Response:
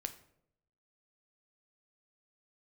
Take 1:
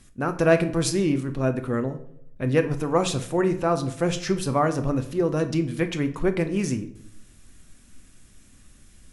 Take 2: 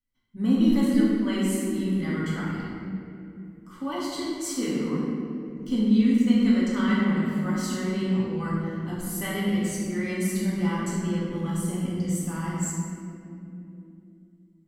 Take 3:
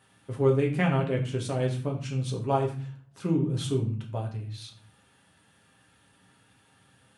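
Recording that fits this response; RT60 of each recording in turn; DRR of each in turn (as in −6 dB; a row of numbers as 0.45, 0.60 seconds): 1; 0.75, 3.0, 0.45 seconds; 8.0, −8.0, −1.0 decibels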